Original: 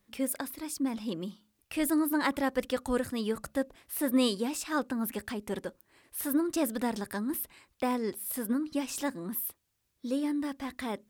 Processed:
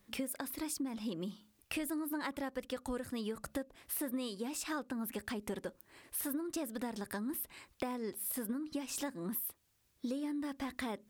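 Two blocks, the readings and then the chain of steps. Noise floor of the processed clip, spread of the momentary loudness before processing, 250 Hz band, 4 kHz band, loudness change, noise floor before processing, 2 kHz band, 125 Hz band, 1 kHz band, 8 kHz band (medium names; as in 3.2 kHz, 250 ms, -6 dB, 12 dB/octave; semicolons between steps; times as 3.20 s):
-74 dBFS, 10 LU, -8.0 dB, -7.0 dB, -7.5 dB, -77 dBFS, -7.0 dB, -5.0 dB, -8.5 dB, -4.0 dB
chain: compression 10:1, threshold -39 dBFS, peak gain reduction 17.5 dB; trim +3.5 dB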